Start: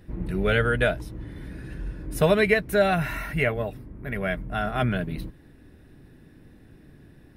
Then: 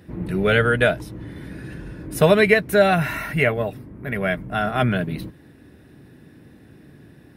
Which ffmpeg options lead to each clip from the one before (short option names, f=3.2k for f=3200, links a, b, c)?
-af "highpass=93,volume=5dB"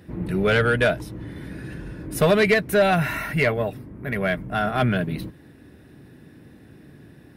-af "asoftclip=type=tanh:threshold=-10.5dB"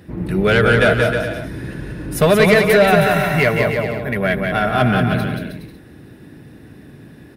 -af "aecho=1:1:180|315|416.2|492.2|549.1:0.631|0.398|0.251|0.158|0.1,volume=4.5dB"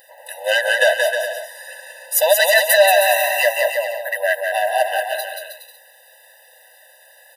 -af "aemphasis=mode=production:type=75kf,afftfilt=real='re*eq(mod(floor(b*sr/1024/510),2),1)':imag='im*eq(mod(floor(b*sr/1024/510),2),1)':win_size=1024:overlap=0.75,volume=1dB"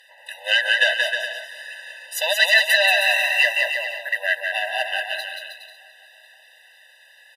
-af "bandpass=f=2.7k:t=q:w=1.4:csg=0,aecho=1:1:527|1054|1581:0.0794|0.0342|0.0147,volume=4dB"